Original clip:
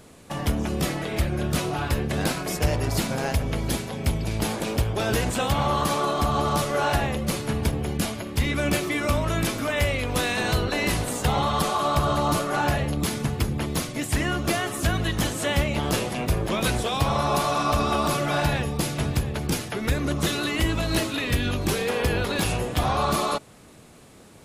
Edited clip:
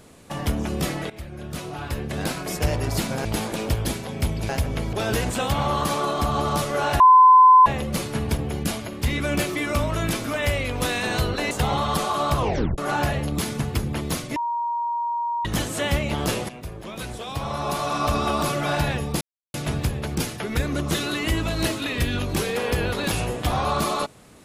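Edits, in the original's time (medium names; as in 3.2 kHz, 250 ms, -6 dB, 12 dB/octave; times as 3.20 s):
1.10–2.64 s: fade in linear, from -15.5 dB
3.25–3.69 s: swap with 4.33–4.93 s
7.00 s: add tone 1.02 kHz -8 dBFS 0.66 s
10.85–11.16 s: delete
12.01 s: tape stop 0.42 s
14.01–15.10 s: bleep 944 Hz -22.5 dBFS
16.14–17.74 s: fade in quadratic, from -12 dB
18.86 s: insert silence 0.33 s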